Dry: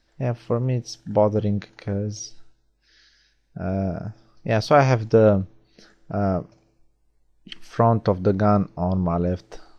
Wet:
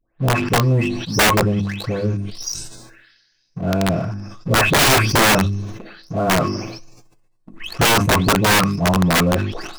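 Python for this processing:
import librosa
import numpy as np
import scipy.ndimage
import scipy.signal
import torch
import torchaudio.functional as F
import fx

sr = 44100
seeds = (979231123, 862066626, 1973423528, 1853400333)

y = fx.spec_delay(x, sr, highs='late', ms=369)
y = fx.leveller(y, sr, passes=2)
y = fx.hum_notches(y, sr, base_hz=50, count=8)
y = fx.small_body(y, sr, hz=(1100.0, 2600.0), ring_ms=60, db=11)
y = (np.mod(10.0 ** (9.5 / 20.0) * y + 1.0, 2.0) - 1.0) / 10.0 ** (9.5 / 20.0)
y = fx.sustainer(y, sr, db_per_s=48.0)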